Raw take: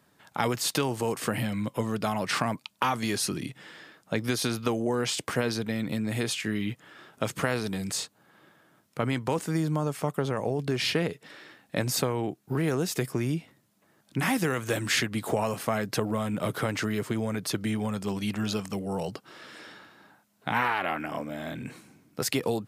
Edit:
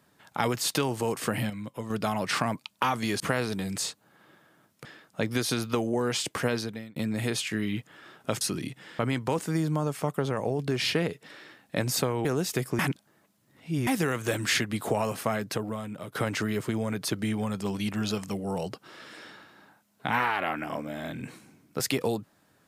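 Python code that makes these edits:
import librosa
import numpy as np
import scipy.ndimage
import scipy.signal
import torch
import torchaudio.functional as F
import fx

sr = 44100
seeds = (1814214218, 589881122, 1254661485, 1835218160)

y = fx.edit(x, sr, fx.clip_gain(start_s=1.5, length_s=0.4, db=-7.0),
    fx.swap(start_s=3.2, length_s=0.58, other_s=7.34, other_length_s=1.65),
    fx.fade_out_span(start_s=5.45, length_s=0.44),
    fx.cut(start_s=12.25, length_s=0.42),
    fx.reverse_span(start_s=13.21, length_s=1.08),
    fx.fade_out_to(start_s=15.66, length_s=0.91, floor_db=-14.0), tone=tone)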